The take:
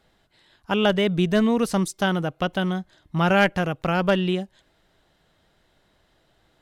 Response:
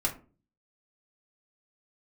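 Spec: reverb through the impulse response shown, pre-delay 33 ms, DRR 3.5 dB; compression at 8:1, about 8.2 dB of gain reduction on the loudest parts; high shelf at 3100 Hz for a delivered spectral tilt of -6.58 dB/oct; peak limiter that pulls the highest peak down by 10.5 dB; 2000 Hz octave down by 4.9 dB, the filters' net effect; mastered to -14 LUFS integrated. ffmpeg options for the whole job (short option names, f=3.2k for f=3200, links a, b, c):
-filter_complex "[0:a]equalizer=f=2k:t=o:g=-6,highshelf=f=3.1k:g=-3.5,acompressor=threshold=-24dB:ratio=8,alimiter=level_in=1.5dB:limit=-24dB:level=0:latency=1,volume=-1.5dB,asplit=2[a][b];[1:a]atrim=start_sample=2205,adelay=33[c];[b][c]afir=irnorm=-1:irlink=0,volume=-10dB[d];[a][d]amix=inputs=2:normalize=0,volume=18.5dB"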